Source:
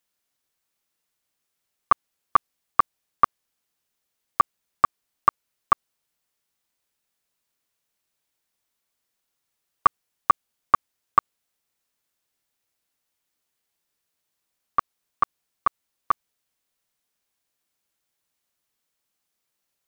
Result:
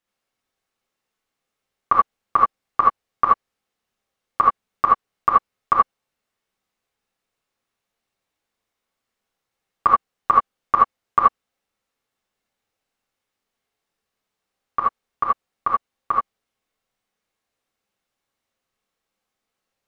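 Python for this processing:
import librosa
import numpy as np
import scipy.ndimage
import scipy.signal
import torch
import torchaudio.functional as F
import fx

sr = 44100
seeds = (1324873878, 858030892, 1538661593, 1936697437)

y = fx.lowpass(x, sr, hz=2500.0, slope=6)
y = fx.rev_gated(y, sr, seeds[0], gate_ms=100, shape='rising', drr_db=-3.5)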